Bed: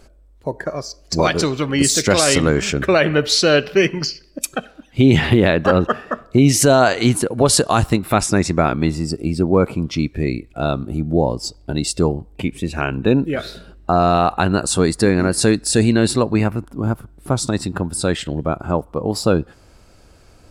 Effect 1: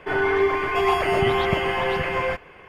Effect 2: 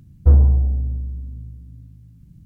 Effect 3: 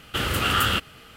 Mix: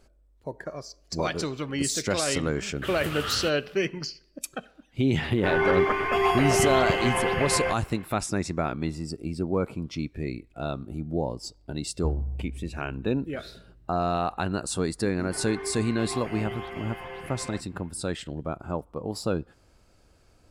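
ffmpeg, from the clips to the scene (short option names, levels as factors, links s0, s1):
-filter_complex "[1:a]asplit=2[s0][s1];[0:a]volume=0.266[s2];[3:a]atrim=end=1.16,asetpts=PTS-STARTPTS,volume=0.282,afade=t=in:d=0.1,afade=t=out:st=1.06:d=0.1,adelay=2700[s3];[s0]atrim=end=2.68,asetpts=PTS-STARTPTS,volume=0.75,afade=t=in:d=0.004:c=hsin,afade=t=out:st=2.676:d=0.004:c=hsin,adelay=236817S[s4];[2:a]atrim=end=2.45,asetpts=PTS-STARTPTS,volume=0.141,afade=t=in:d=0.004:c=hsin,afade=t=out:st=2.446:d=0.004:c=hsin,adelay=519498S[s5];[s1]atrim=end=2.68,asetpts=PTS-STARTPTS,volume=0.158,afade=t=in:d=0.004:c=hsin,afade=t=out:st=2.676:d=0.004:c=hsin,adelay=672084S[s6];[s2][s3][s4][s5][s6]amix=inputs=5:normalize=0"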